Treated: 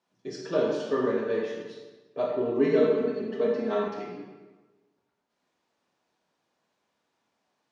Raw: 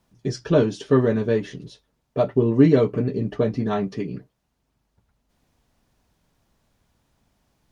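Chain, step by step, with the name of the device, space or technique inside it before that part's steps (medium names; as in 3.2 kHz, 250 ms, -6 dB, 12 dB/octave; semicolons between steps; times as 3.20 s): supermarket ceiling speaker (band-pass 340–6400 Hz; reverberation RT60 1.3 s, pre-delay 18 ms, DRR -2.5 dB); 2.59–3.88 s: comb 4.6 ms, depth 72%; trim -8.5 dB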